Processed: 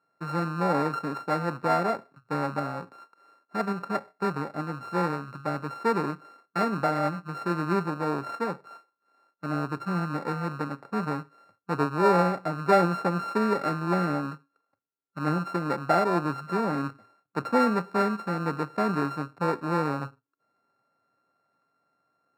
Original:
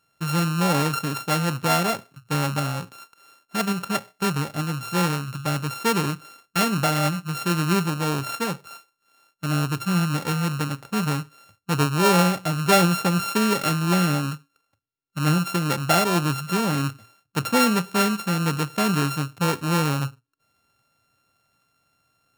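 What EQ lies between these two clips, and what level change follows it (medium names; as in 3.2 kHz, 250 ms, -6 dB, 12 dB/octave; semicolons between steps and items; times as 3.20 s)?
boxcar filter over 14 samples; high-pass 260 Hz 12 dB/octave; 0.0 dB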